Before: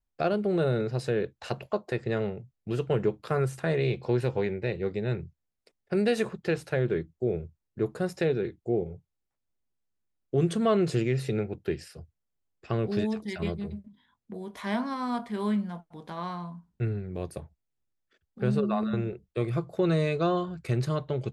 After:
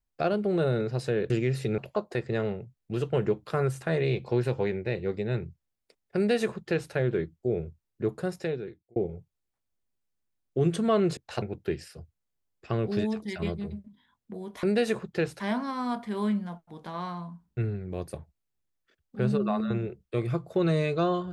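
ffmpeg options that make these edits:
ffmpeg -i in.wav -filter_complex "[0:a]asplit=8[link_01][link_02][link_03][link_04][link_05][link_06][link_07][link_08];[link_01]atrim=end=1.302[link_09];[link_02]atrim=start=10.938:end=11.422[link_10];[link_03]atrim=start=1.548:end=8.73,asetpts=PTS-STARTPTS,afade=type=out:start_time=6.372:duration=0.81[link_11];[link_04]atrim=start=8.73:end=10.942,asetpts=PTS-STARTPTS,afade=type=in:duration=0.004:curve=hsin[link_12];[link_05]atrim=start=1.298:end=1.552[link_13];[link_06]atrim=start=11.418:end=14.632[link_14];[link_07]atrim=start=5.928:end=6.702[link_15];[link_08]atrim=start=14.628[link_16];[link_09][link_10]acrossfade=duration=0.004:curve1=hsin:curve2=hsin[link_17];[link_11][link_12]concat=n=2:v=0:a=1[link_18];[link_17][link_18]acrossfade=duration=0.004:curve1=hsin:curve2=hsin[link_19];[link_19][link_13]acrossfade=duration=0.004:curve1=hsin:curve2=hsin[link_20];[link_20][link_14]acrossfade=duration=0.004:curve1=hsin:curve2=hsin[link_21];[link_21][link_15]acrossfade=duration=0.004:curve1=hsin:curve2=hsin[link_22];[link_22][link_16]acrossfade=duration=0.004:curve1=hsin:curve2=hsin" out.wav

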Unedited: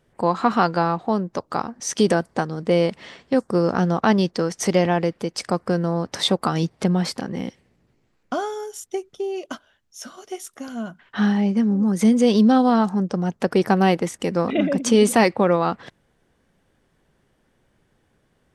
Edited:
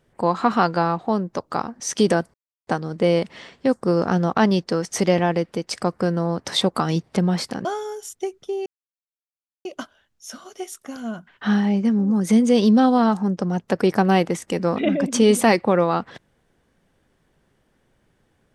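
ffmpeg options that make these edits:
ffmpeg -i in.wav -filter_complex "[0:a]asplit=4[link_01][link_02][link_03][link_04];[link_01]atrim=end=2.34,asetpts=PTS-STARTPTS,afade=type=out:start_time=2.336:duration=0.004:curve=hsin,apad=pad_dur=0.33[link_05];[link_02]atrim=start=2.34:end=7.322,asetpts=PTS-STARTPTS,afade=type=in:duration=0.004:curve=hsin[link_06];[link_03]atrim=start=8.358:end=9.37,asetpts=PTS-STARTPTS,afade=type=out:start_time=1.008:duration=0.004:curve=hsin,apad=pad_dur=0.99[link_07];[link_04]atrim=start=9.37,asetpts=PTS-STARTPTS,afade=type=in:duration=0.004:curve=hsin[link_08];[link_05][link_06]concat=n=2:v=0:a=1[link_09];[link_07][link_08]concat=n=2:v=0:a=1[link_10];[link_09][link_10]acrossfade=duration=0.004:curve1=hsin:curve2=hsin" out.wav

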